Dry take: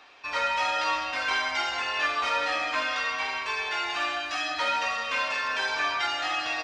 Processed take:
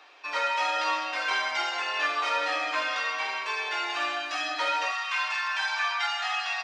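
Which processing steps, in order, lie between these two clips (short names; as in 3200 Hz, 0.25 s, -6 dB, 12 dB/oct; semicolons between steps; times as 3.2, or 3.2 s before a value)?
elliptic high-pass 300 Hz, stop band 50 dB, from 4.91 s 750 Hz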